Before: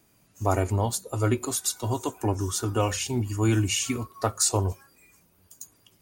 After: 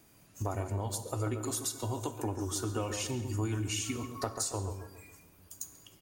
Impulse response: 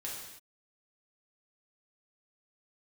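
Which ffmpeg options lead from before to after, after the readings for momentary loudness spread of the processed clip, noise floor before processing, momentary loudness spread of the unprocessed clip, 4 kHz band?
11 LU, -64 dBFS, 9 LU, -8.0 dB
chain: -filter_complex "[0:a]acompressor=threshold=-34dB:ratio=6,asplit=2[a][b];[b]adelay=138,lowpass=f=1.5k:p=1,volume=-7dB,asplit=2[c][d];[d]adelay=138,lowpass=f=1.5k:p=1,volume=0.45,asplit=2[e][f];[f]adelay=138,lowpass=f=1.5k:p=1,volume=0.45,asplit=2[g][h];[h]adelay=138,lowpass=f=1.5k:p=1,volume=0.45,asplit=2[i][j];[j]adelay=138,lowpass=f=1.5k:p=1,volume=0.45[k];[a][c][e][g][i][k]amix=inputs=6:normalize=0,asplit=2[l][m];[1:a]atrim=start_sample=2205[n];[m][n]afir=irnorm=-1:irlink=0,volume=-9.5dB[o];[l][o]amix=inputs=2:normalize=0"

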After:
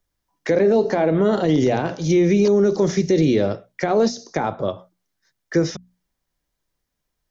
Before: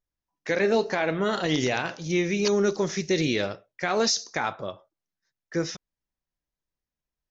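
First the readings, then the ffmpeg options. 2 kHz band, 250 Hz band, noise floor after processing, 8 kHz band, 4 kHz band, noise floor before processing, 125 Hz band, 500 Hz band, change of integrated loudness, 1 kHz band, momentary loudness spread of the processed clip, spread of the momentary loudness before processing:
-2.0 dB, +9.0 dB, -79 dBFS, n/a, -3.5 dB, under -85 dBFS, +9.5 dB, +8.0 dB, +6.5 dB, +4.0 dB, 10 LU, 10 LU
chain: -filter_complex "[0:a]bandreject=f=2.6k:w=16,acrossover=split=180|730[a][b][c];[c]acompressor=threshold=-42dB:ratio=10[d];[a][b][d]amix=inputs=3:normalize=0,bandreject=f=60:t=h:w=6,bandreject=f=120:t=h:w=6,bandreject=f=180:t=h:w=6,bandreject=f=240:t=h:w=6,alimiter=level_in=20dB:limit=-1dB:release=50:level=0:latency=1,volume=-8dB"

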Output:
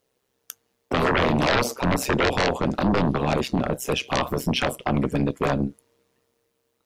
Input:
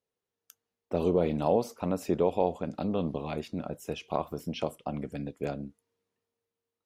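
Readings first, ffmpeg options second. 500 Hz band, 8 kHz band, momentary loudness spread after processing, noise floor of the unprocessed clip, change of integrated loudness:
+4.5 dB, +16.0 dB, 7 LU, under -85 dBFS, +8.0 dB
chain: -af "aeval=exprs='0.266*sin(PI/2*7.08*val(0)/0.266)':c=same,tremolo=f=130:d=0.71,volume=-2dB"

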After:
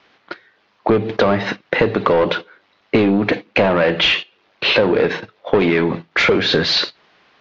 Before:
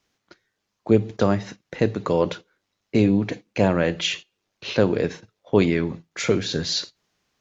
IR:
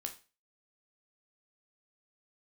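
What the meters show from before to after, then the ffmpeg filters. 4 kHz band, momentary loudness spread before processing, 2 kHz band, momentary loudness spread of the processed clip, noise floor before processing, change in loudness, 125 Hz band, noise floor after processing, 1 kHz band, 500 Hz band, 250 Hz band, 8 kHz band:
+10.0 dB, 13 LU, +12.5 dB, 11 LU, -78 dBFS, +6.0 dB, +0.5 dB, -60 dBFS, +9.5 dB, +6.5 dB, +3.0 dB, n/a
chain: -filter_complex "[0:a]asplit=2[a][b];[b]highpass=f=720:p=1,volume=23dB,asoftclip=type=tanh:threshold=-4dB[c];[a][c]amix=inputs=2:normalize=0,lowpass=f=2.1k:p=1,volume=-6dB,lowpass=f=4.4k:w=0.5412,lowpass=f=4.4k:w=1.3066,acompressor=threshold=-19dB:ratio=6,volume=7dB"

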